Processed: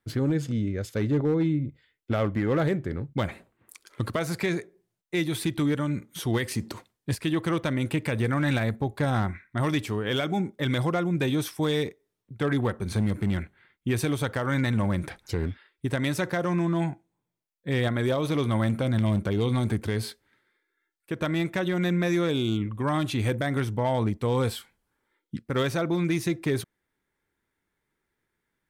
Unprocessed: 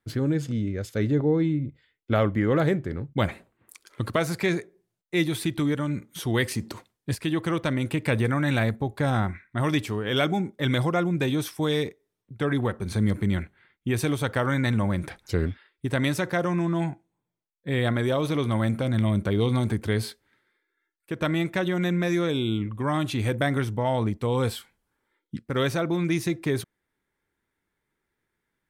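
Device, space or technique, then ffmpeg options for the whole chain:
limiter into clipper: -af "alimiter=limit=-16dB:level=0:latency=1:release=171,asoftclip=type=hard:threshold=-18.5dB"

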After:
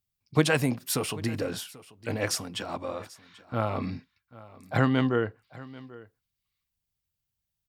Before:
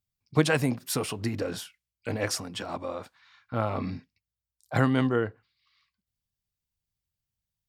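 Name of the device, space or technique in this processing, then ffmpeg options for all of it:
presence and air boost: -filter_complex "[0:a]asplit=3[link_01][link_02][link_03];[link_01]afade=type=out:start_time=4.76:duration=0.02[link_04];[link_02]lowpass=frequency=6700:width=0.5412,lowpass=frequency=6700:width=1.3066,afade=type=in:start_time=4.76:duration=0.02,afade=type=out:start_time=5.26:duration=0.02[link_05];[link_03]afade=type=in:start_time=5.26:duration=0.02[link_06];[link_04][link_05][link_06]amix=inputs=3:normalize=0,equalizer=frequency=2900:width_type=o:width=0.77:gain=2,highshelf=frequency=11000:gain=5,aecho=1:1:788:0.1"

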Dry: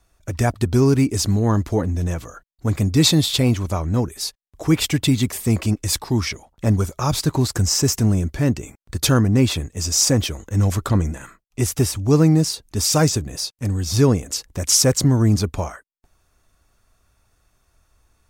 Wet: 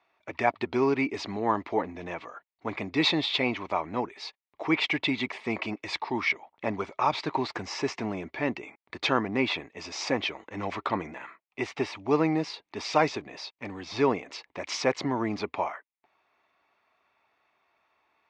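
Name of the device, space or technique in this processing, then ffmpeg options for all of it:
phone earpiece: -af "highpass=470,equalizer=frequency=510:width_type=q:width=4:gain=-5,equalizer=frequency=910:width_type=q:width=4:gain=4,equalizer=frequency=1500:width_type=q:width=4:gain=-6,equalizer=frequency=2200:width_type=q:width=4:gain=6,equalizer=frequency=3200:width_type=q:width=4:gain=-3,lowpass=frequency=3400:width=0.5412,lowpass=frequency=3400:width=1.3066"

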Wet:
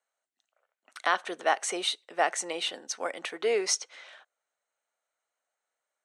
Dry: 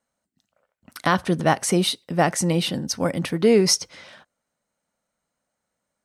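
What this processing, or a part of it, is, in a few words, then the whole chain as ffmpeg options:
phone speaker on a table: -af "highpass=frequency=470:width=0.5412,highpass=frequency=470:width=1.3066,equalizer=frequency=540:width_type=q:width=4:gain=-6,equalizer=frequency=970:width_type=q:width=4:gain=-4,equalizer=frequency=5000:width_type=q:width=4:gain=-10,lowpass=frequency=8200:width=0.5412,lowpass=frequency=8200:width=1.3066,volume=-3dB"

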